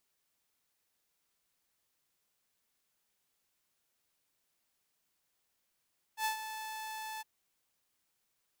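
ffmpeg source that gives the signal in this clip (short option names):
-f lavfi -i "aevalsrc='0.0447*(2*mod(873*t,1)-1)':d=1.062:s=44100,afade=t=in:d=0.082,afade=t=out:st=0.082:d=0.109:silence=0.299,afade=t=out:st=1.04:d=0.022"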